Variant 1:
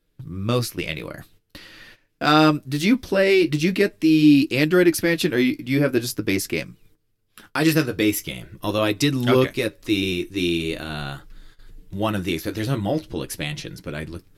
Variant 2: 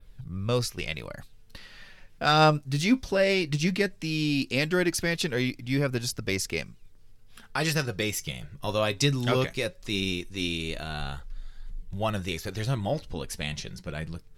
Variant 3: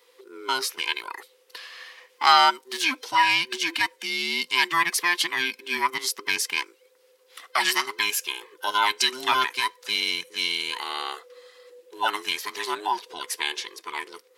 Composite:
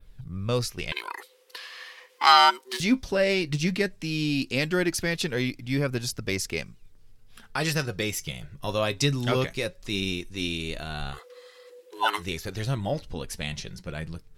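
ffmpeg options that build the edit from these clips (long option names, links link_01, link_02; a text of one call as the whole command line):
ffmpeg -i take0.wav -i take1.wav -i take2.wav -filter_complex "[2:a]asplit=2[link_01][link_02];[1:a]asplit=3[link_03][link_04][link_05];[link_03]atrim=end=0.922[link_06];[link_01]atrim=start=0.918:end=2.802[link_07];[link_04]atrim=start=2.798:end=11.2[link_08];[link_02]atrim=start=11.1:end=12.27[link_09];[link_05]atrim=start=12.17[link_10];[link_06][link_07]acrossfade=duration=0.004:curve1=hsin:curve2=hsin[link_11];[link_11][link_08]acrossfade=duration=0.004:curve1=hsin:curve2=hsin[link_12];[link_12][link_09]acrossfade=duration=0.1:curve1=tri:curve2=tri[link_13];[link_13][link_10]acrossfade=duration=0.1:curve1=tri:curve2=tri" out.wav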